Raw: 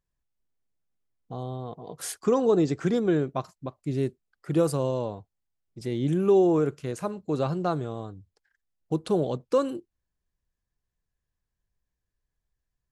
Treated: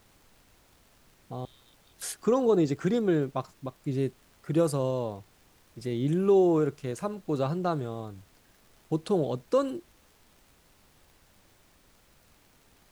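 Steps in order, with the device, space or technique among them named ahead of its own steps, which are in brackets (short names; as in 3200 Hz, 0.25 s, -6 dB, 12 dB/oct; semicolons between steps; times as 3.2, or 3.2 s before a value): 1.45–2.02 inverse Chebyshev band-stop 110–1400 Hz; vinyl LP (crackle; pink noise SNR 31 dB); gain -1.5 dB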